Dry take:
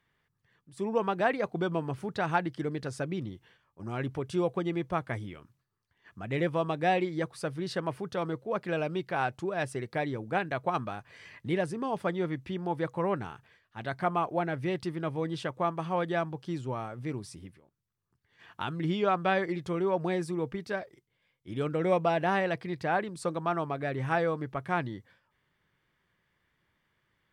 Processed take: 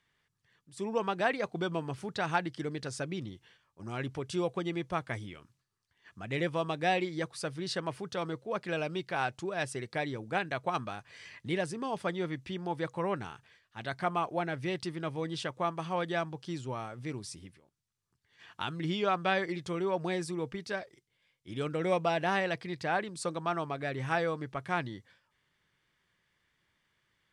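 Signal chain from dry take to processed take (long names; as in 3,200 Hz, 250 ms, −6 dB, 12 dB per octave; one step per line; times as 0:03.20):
low-pass filter 8,500 Hz 12 dB per octave
high-shelf EQ 2,900 Hz +11.5 dB
level −3.5 dB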